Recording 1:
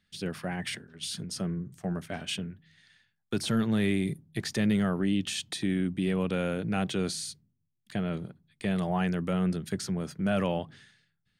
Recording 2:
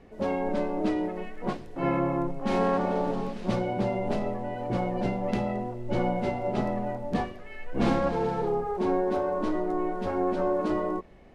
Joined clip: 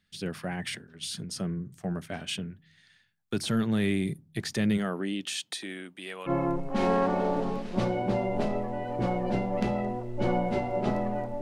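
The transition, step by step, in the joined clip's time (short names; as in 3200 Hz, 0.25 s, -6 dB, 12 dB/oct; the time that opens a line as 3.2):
recording 1
4.77–6.31 HPF 210 Hz -> 900 Hz
6.28 switch to recording 2 from 1.99 s, crossfade 0.06 s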